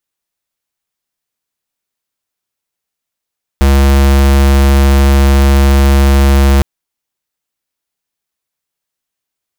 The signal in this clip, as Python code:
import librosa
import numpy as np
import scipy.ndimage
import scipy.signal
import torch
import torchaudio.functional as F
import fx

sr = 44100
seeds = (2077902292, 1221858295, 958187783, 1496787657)

y = fx.tone(sr, length_s=3.01, wave='square', hz=68.7, level_db=-7.0)